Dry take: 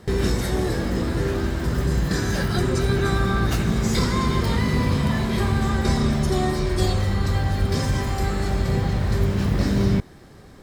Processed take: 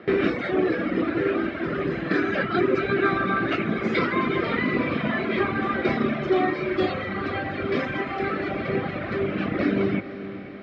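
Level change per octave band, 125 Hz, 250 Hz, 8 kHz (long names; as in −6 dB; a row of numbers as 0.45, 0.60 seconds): −12.0 dB, −1.0 dB, below −25 dB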